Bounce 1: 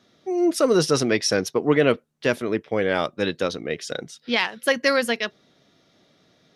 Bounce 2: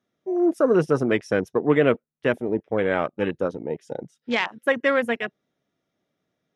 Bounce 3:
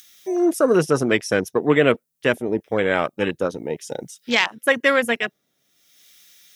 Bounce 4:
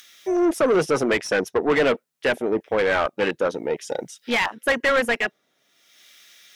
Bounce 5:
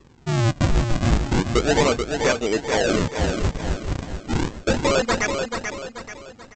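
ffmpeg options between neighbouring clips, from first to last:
ffmpeg -i in.wav -af "equalizer=frequency=4300:width_type=o:width=0.69:gain=-11,afwtdn=0.0316" out.wav
ffmpeg -i in.wav -filter_complex "[0:a]acrossover=split=1900[link_01][link_02];[link_02]acompressor=mode=upward:threshold=-44dB:ratio=2.5[link_03];[link_01][link_03]amix=inputs=2:normalize=0,crystalizer=i=4:c=0,volume=1.5dB" out.wav
ffmpeg -i in.wav -filter_complex "[0:a]asplit=2[link_01][link_02];[link_02]highpass=frequency=720:poles=1,volume=22dB,asoftclip=type=tanh:threshold=-3dB[link_03];[link_01][link_03]amix=inputs=2:normalize=0,lowpass=frequency=2100:poles=1,volume=-6dB,volume=-7dB" out.wav
ffmpeg -i in.wav -af "aresample=16000,acrusher=samples=21:mix=1:aa=0.000001:lfo=1:lforange=33.6:lforate=0.33,aresample=44100,aecho=1:1:435|870|1305|1740|2175:0.501|0.205|0.0842|0.0345|0.0142" out.wav

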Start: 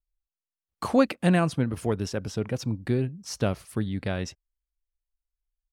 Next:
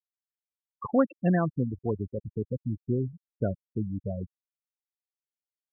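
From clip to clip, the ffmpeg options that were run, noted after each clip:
ffmpeg -i in.wav -af "afftfilt=real='re*gte(hypot(re,im),0.126)':imag='im*gte(hypot(re,im),0.126)':win_size=1024:overlap=0.75,volume=-2.5dB" out.wav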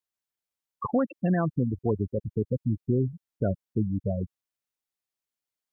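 ffmpeg -i in.wav -af "alimiter=limit=-20.5dB:level=0:latency=1:release=75,volume=4.5dB" out.wav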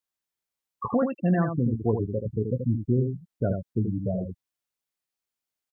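ffmpeg -i in.wav -af "aecho=1:1:17|80:0.355|0.501" out.wav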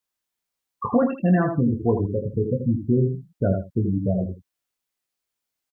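ffmpeg -i in.wav -af "aecho=1:1:21|77:0.447|0.211,volume=3.5dB" out.wav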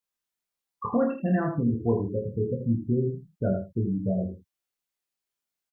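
ffmpeg -i in.wav -filter_complex "[0:a]asplit=2[link_01][link_02];[link_02]adelay=26,volume=-4dB[link_03];[link_01][link_03]amix=inputs=2:normalize=0,volume=-6dB" out.wav

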